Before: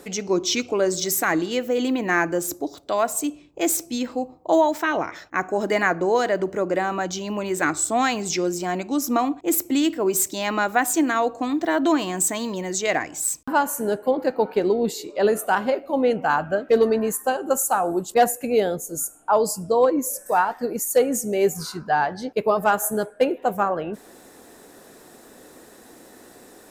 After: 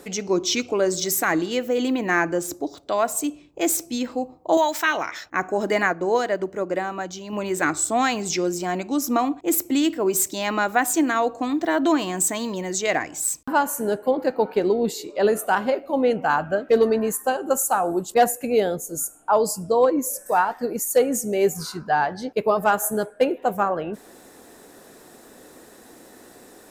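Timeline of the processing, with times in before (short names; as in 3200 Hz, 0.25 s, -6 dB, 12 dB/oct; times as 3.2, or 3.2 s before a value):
2.2–3.03 bell 14000 Hz -7.5 dB 0.83 oct
4.57–5.26 tilt shelf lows -8 dB
5.86–7.33 upward expander, over -29 dBFS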